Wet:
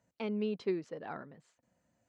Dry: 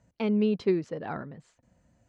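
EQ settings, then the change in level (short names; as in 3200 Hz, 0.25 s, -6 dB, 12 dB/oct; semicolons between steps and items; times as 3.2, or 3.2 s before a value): HPF 280 Hz 6 dB/oct; -6.0 dB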